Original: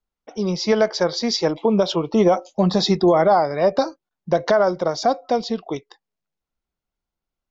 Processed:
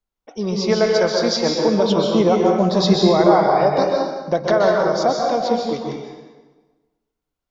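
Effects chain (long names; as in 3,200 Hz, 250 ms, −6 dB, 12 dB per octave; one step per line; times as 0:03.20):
dense smooth reverb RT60 1.3 s, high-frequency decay 0.8×, pre-delay 115 ms, DRR −1 dB
level −1 dB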